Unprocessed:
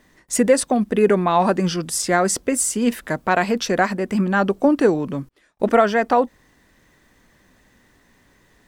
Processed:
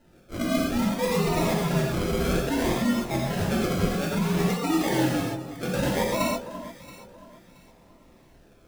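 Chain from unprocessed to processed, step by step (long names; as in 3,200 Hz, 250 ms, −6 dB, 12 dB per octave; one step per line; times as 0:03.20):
partials spread apart or drawn together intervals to 130%
high-shelf EQ 10,000 Hz +7.5 dB
reversed playback
downward compressor 10 to 1, threshold −27 dBFS, peak gain reduction 14.5 dB
reversed playback
sample-and-hold swept by an LFO 38×, swing 60% 0.6 Hz
on a send: delay that swaps between a low-pass and a high-pass 338 ms, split 1,200 Hz, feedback 52%, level −11 dB
on the sum: reverb whose tail is shaped and stops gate 160 ms flat, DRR −4 dB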